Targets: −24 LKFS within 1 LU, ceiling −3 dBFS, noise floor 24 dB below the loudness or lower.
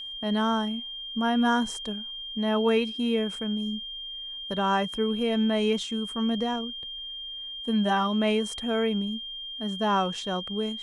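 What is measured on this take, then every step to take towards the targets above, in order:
interfering tone 3,200 Hz; level of the tone −35 dBFS; integrated loudness −27.5 LKFS; sample peak −12.5 dBFS; target loudness −24.0 LKFS
→ notch filter 3,200 Hz, Q 30
level +3.5 dB

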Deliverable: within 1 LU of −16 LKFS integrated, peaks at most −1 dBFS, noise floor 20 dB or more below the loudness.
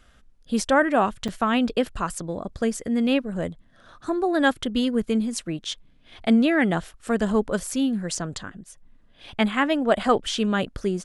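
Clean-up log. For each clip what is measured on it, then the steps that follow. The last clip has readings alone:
number of dropouts 1; longest dropout 6.0 ms; integrated loudness −24.0 LKFS; sample peak −5.5 dBFS; target loudness −16.0 LKFS
→ repair the gap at 0:01.28, 6 ms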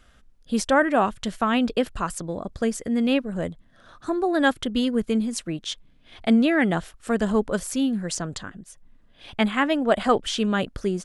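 number of dropouts 0; integrated loudness −24.0 LKFS; sample peak −5.5 dBFS; target loudness −16.0 LKFS
→ level +8 dB
brickwall limiter −1 dBFS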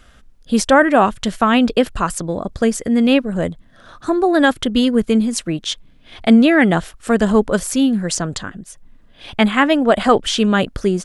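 integrated loudness −16.5 LKFS; sample peak −1.0 dBFS; background noise floor −48 dBFS

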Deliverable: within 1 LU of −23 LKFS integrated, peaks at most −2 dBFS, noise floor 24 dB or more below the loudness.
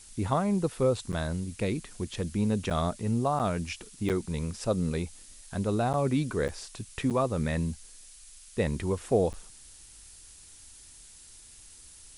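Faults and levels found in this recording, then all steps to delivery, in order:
number of dropouts 8; longest dropout 8.0 ms; background noise floor −52 dBFS; target noise floor −54 dBFS; integrated loudness −30.0 LKFS; sample peak −13.0 dBFS; target loudness −23.0 LKFS
→ repair the gap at 0:01.12/0:02.70/0:03.39/0:04.09/0:05.93/0:06.48/0:07.10/0:09.33, 8 ms
noise reduction from a noise print 6 dB
level +7 dB

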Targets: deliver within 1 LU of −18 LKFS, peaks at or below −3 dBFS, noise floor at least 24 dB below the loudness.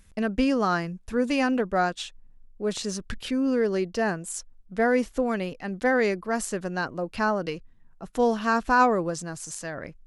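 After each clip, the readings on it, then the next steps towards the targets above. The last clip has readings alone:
integrated loudness −26.5 LKFS; sample peak −9.0 dBFS; target loudness −18.0 LKFS
→ level +8.5 dB
brickwall limiter −3 dBFS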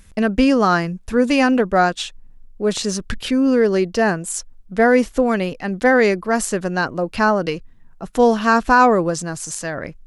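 integrated loudness −18.0 LKFS; sample peak −3.0 dBFS; background noise floor −45 dBFS

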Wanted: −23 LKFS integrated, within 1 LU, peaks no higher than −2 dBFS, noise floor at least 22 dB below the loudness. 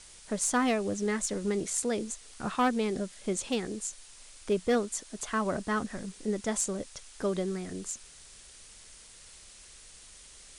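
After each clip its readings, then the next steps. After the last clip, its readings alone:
share of clipped samples 0.3%; peaks flattened at −20.0 dBFS; background noise floor −53 dBFS; target noise floor −54 dBFS; integrated loudness −31.5 LKFS; sample peak −20.0 dBFS; target loudness −23.0 LKFS
→ clipped peaks rebuilt −20 dBFS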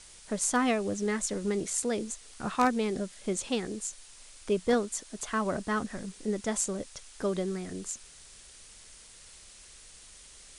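share of clipped samples 0.0%; background noise floor −53 dBFS; target noise floor −54 dBFS
→ broadband denoise 6 dB, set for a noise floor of −53 dBFS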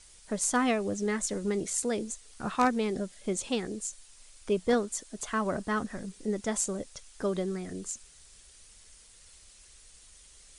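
background noise floor −56 dBFS; integrated loudness −31.5 LKFS; sample peak −11.0 dBFS; target loudness −23.0 LKFS
→ level +8.5 dB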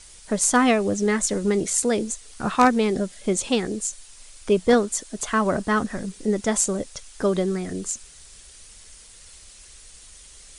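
integrated loudness −23.0 LKFS; sample peak −2.5 dBFS; background noise floor −47 dBFS

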